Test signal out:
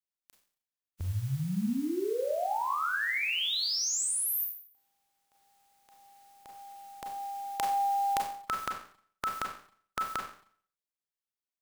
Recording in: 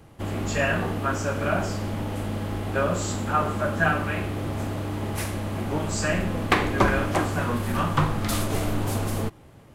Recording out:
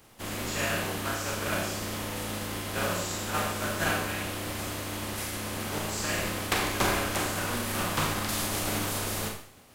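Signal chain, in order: spectral contrast lowered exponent 0.5; Schroeder reverb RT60 0.52 s, combs from 30 ms, DRR 1.5 dB; gain -8 dB

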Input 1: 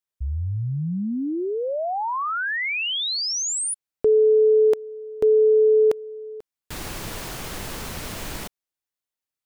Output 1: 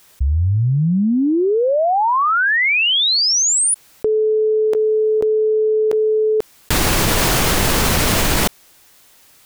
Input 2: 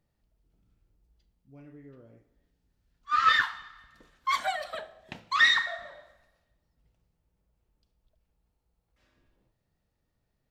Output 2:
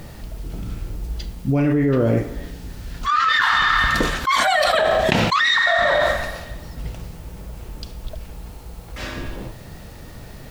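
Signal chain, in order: fast leveller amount 100%

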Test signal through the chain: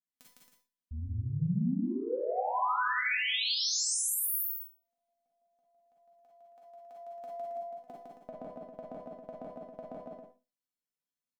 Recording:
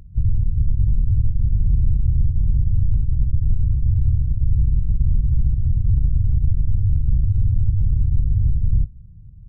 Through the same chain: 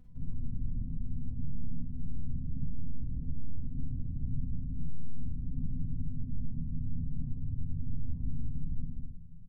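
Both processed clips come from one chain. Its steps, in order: dynamic EQ 290 Hz, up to +6 dB, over -33 dBFS, Q 0.96; notch 370 Hz, Q 12; negative-ratio compressor -18 dBFS, ratio -0.5; bell 200 Hz +11 dB 1.3 oct; resonator 250 Hz, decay 0.2 s, harmonics all, mix 90%; on a send: loudspeakers at several distances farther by 54 m -2 dB, 93 m -8 dB; on the sum: Schroeder reverb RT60 0.3 s, DRR -1.5 dB; limiter -13.5 dBFS; gain -8.5 dB

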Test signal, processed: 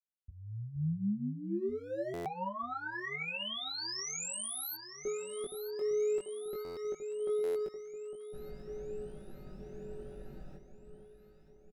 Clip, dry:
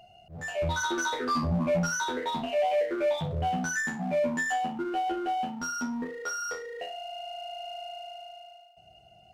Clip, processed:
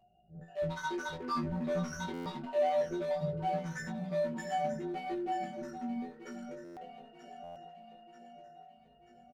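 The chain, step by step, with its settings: Wiener smoothing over 41 samples; comb 5.3 ms, depth 71%; echo with dull and thin repeats by turns 0.468 s, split 1100 Hz, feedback 72%, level -8 dB; chorus 0.25 Hz, delay 18 ms, depth 3 ms; stuck buffer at 2.13/6.64/7.43, samples 512, times 10; gain -5 dB

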